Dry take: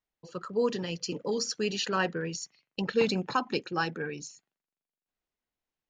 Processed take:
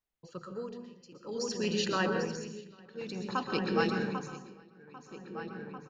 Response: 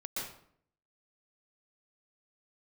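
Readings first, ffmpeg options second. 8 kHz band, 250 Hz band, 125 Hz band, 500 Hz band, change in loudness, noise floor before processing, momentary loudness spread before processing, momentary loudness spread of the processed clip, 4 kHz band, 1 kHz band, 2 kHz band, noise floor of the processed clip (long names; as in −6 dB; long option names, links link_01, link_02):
−6.0 dB, −1.0 dB, −1.5 dB, −3.5 dB, −3.0 dB, below −85 dBFS, 12 LU, 19 LU, −4.0 dB, −2.5 dB, −2.5 dB, −61 dBFS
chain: -filter_complex "[0:a]asplit=2[link_01][link_02];[link_02]adelay=795,lowpass=frequency=3000:poles=1,volume=-3.5dB,asplit=2[link_03][link_04];[link_04]adelay=795,lowpass=frequency=3000:poles=1,volume=0.49,asplit=2[link_05][link_06];[link_06]adelay=795,lowpass=frequency=3000:poles=1,volume=0.49,asplit=2[link_07][link_08];[link_08]adelay=795,lowpass=frequency=3000:poles=1,volume=0.49,asplit=2[link_09][link_10];[link_10]adelay=795,lowpass=frequency=3000:poles=1,volume=0.49,asplit=2[link_11][link_12];[link_12]adelay=795,lowpass=frequency=3000:poles=1,volume=0.49[link_13];[link_01][link_03][link_05][link_07][link_09][link_11][link_13]amix=inputs=7:normalize=0,tremolo=f=0.54:d=0.95,asplit=2[link_14][link_15];[1:a]atrim=start_sample=2205,lowshelf=frequency=210:gain=10.5[link_16];[link_15][link_16]afir=irnorm=-1:irlink=0,volume=-5dB[link_17];[link_14][link_17]amix=inputs=2:normalize=0,volume=-5dB"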